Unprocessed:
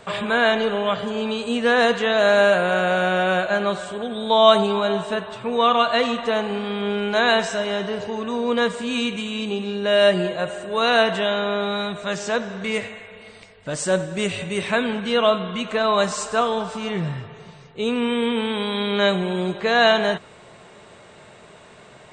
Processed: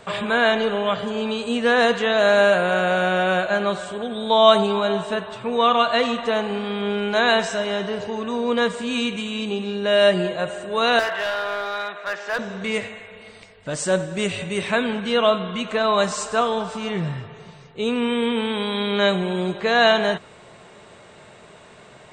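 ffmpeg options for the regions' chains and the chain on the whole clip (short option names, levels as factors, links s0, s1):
-filter_complex "[0:a]asettb=1/sr,asplit=3[s0][s1][s2];[s0]atrim=end=10.994[s3];[s1]atrim=start=10.99:end=12.39,asetpts=PTS-STARTPTS,afade=t=in:d=0.004:c=qsin,afade=t=out:st=1.396:d=0.004:c=qsin,highpass=590,lowpass=2800,equalizer=f=1700:w=1.6:g=5,asoftclip=type=hard:threshold=0.106[s4];[s2]atrim=start=12.386[s5];[s3][s4]acrossfade=d=0.004:c1=hsin:c2=qsin[s6];[s6][s5]acrossfade=d=0.004:c1=qsin:c2=hsin"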